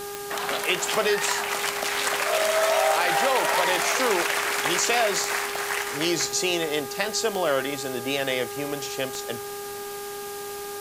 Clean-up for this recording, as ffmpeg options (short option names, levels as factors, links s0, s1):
-af "adeclick=t=4,bandreject=f=405.7:t=h:w=4,bandreject=f=811.4:t=h:w=4,bandreject=f=1217.1:t=h:w=4,bandreject=f=1622.8:t=h:w=4,afwtdn=0.011"